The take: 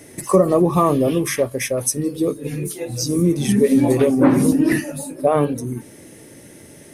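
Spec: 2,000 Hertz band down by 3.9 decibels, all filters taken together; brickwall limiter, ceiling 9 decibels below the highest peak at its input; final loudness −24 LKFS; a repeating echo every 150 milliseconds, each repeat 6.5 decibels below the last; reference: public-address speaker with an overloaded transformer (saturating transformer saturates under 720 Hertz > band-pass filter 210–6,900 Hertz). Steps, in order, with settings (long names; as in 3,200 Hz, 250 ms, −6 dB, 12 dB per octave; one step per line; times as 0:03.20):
parametric band 2,000 Hz −4.5 dB
brickwall limiter −12 dBFS
repeating echo 150 ms, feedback 47%, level −6.5 dB
saturating transformer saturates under 720 Hz
band-pass filter 210–6,900 Hz
level +0.5 dB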